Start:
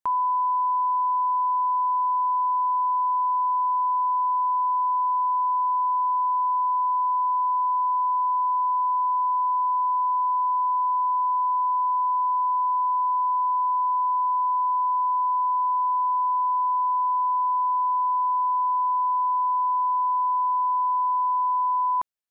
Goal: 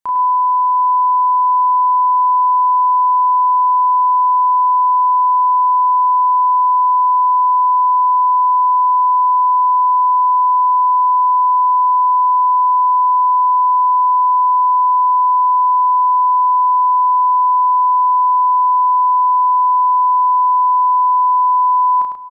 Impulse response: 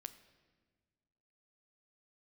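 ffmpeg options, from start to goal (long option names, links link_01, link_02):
-filter_complex "[0:a]bandreject=frequency=60:width_type=h:width=6,bandreject=frequency=120:width_type=h:width=6,asplit=2[link_01][link_02];[link_02]adelay=33,volume=-3.5dB[link_03];[link_01][link_03]amix=inputs=2:normalize=0,aecho=1:1:701|1402|2103:0.0841|0.0395|0.0186,asplit=2[link_04][link_05];[1:a]atrim=start_sample=2205,adelay=103[link_06];[link_05][link_06]afir=irnorm=-1:irlink=0,volume=-1.5dB[link_07];[link_04][link_07]amix=inputs=2:normalize=0,volume=2.5dB"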